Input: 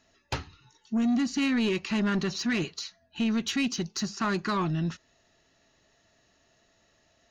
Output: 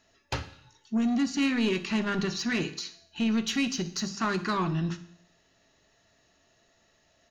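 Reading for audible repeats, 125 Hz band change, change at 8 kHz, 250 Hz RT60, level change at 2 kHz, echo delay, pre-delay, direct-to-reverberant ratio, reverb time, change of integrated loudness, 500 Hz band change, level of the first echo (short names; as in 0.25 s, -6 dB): 1, -0.5 dB, n/a, 0.70 s, +0.5 dB, 61 ms, 11 ms, 10.5 dB, 0.70 s, 0.0 dB, 0.0 dB, -17.5 dB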